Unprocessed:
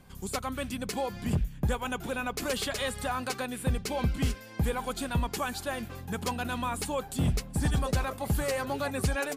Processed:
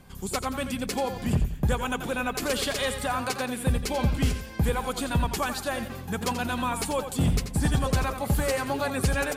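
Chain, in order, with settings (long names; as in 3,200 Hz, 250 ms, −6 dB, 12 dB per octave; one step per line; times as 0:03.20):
feedback echo with a swinging delay time 87 ms, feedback 33%, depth 67 cents, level −9.5 dB
level +3.5 dB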